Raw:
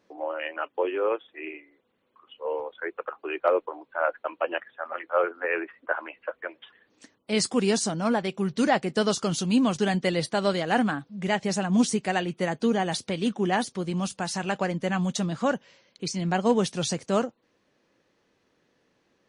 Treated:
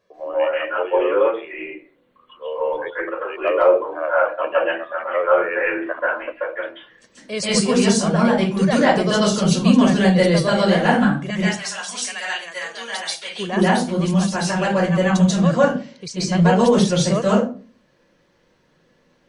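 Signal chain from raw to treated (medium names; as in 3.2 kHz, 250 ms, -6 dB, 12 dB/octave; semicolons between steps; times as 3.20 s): 11.30–13.35 s: high-pass 1.4 kHz 12 dB/octave; reverberation RT60 0.35 s, pre-delay 132 ms, DRR -7.5 dB; trim -2.5 dB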